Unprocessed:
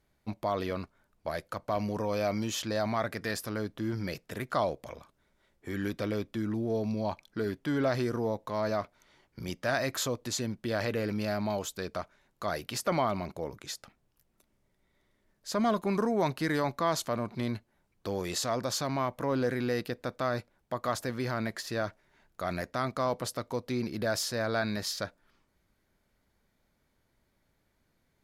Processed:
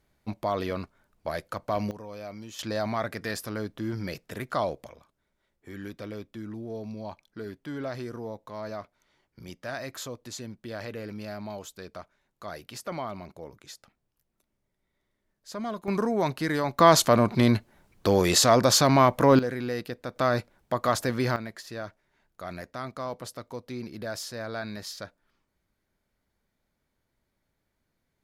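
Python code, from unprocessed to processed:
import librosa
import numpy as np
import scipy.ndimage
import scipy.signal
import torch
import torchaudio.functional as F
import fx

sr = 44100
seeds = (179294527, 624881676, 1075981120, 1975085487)

y = fx.gain(x, sr, db=fx.steps((0.0, 2.5), (1.91, -10.0), (2.59, 1.0), (4.87, -6.0), (15.88, 2.0), (16.79, 12.0), (19.39, -0.5), (20.16, 6.5), (21.36, -4.5)))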